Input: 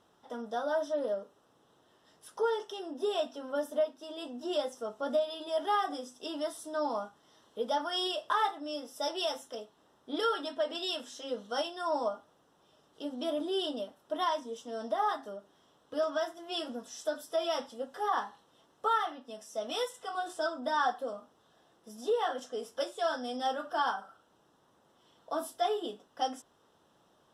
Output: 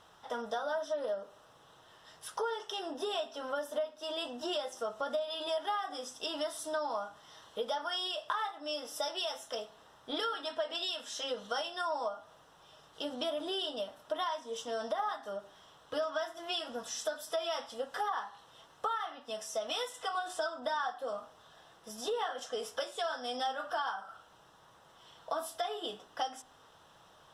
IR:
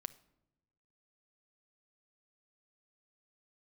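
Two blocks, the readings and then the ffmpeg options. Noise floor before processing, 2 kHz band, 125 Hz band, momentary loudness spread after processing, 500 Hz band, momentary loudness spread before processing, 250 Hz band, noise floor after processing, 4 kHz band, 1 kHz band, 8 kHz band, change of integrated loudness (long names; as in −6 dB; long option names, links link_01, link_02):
−68 dBFS, −1.0 dB, can't be measured, 7 LU, −3.5 dB, 11 LU, −6.0 dB, −61 dBFS, +1.0 dB, −3.5 dB, +3.5 dB, −2.5 dB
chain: -filter_complex "[0:a]equalizer=frequency=280:width=0.68:gain=-14,acompressor=threshold=-44dB:ratio=6,asplit=2[link_01][link_02];[1:a]atrim=start_sample=2205,highshelf=frequency=6300:gain=-10[link_03];[link_02][link_03]afir=irnorm=-1:irlink=0,volume=12.5dB[link_04];[link_01][link_04]amix=inputs=2:normalize=0"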